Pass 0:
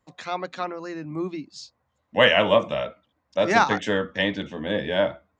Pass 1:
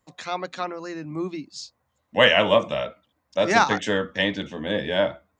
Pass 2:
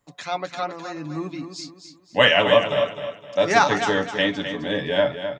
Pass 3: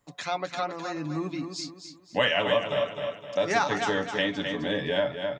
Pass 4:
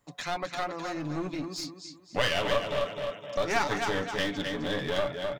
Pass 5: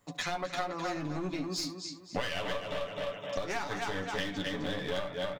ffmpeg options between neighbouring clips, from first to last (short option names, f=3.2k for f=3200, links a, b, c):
-af "highshelf=f=5.6k:g=8"
-af "aecho=1:1:7:0.5,aecho=1:1:258|516|774|1032:0.355|0.117|0.0386|0.0128"
-af "acompressor=threshold=-27dB:ratio=2"
-af "aeval=exprs='clip(val(0),-1,0.0224)':c=same"
-filter_complex "[0:a]acompressor=threshold=-34dB:ratio=6,asplit=2[a][b];[b]aecho=0:1:11|72:0.473|0.158[c];[a][c]amix=inputs=2:normalize=0,volume=2.5dB"